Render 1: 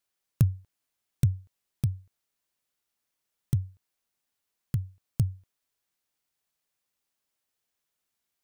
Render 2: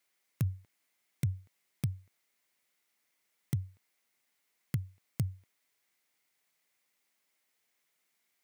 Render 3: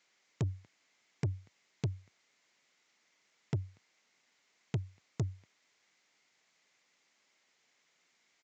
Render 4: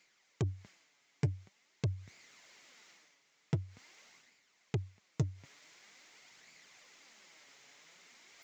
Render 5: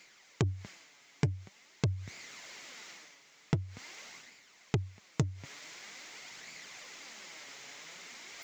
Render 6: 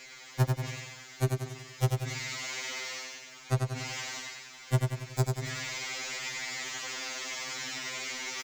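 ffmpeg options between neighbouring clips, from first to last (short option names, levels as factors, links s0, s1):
-af "highpass=160,equalizer=f=2100:w=4.3:g=9.5,alimiter=level_in=1.26:limit=0.0631:level=0:latency=1:release=49,volume=0.794,volume=1.58"
-af "equalizer=f=84:w=3.5:g=-14.5,aresample=16000,asoftclip=type=tanh:threshold=0.0178,aresample=44100,volume=2.51"
-af "areverse,acompressor=mode=upward:threshold=0.00316:ratio=2.5,areverse,flanger=delay=0.4:depth=6.8:regen=50:speed=0.46:shape=sinusoidal,volume=1.88"
-af "acompressor=threshold=0.00794:ratio=2.5,volume=3.76"
-filter_complex "[0:a]aeval=exprs='0.188*sin(PI/2*3.98*val(0)/0.188)':c=same,asplit=2[s0][s1];[s1]aecho=0:1:93|186|279|372|465|558:0.631|0.315|0.158|0.0789|0.0394|0.0197[s2];[s0][s2]amix=inputs=2:normalize=0,afftfilt=real='re*2.45*eq(mod(b,6),0)':imag='im*2.45*eq(mod(b,6),0)':win_size=2048:overlap=0.75,volume=0.668"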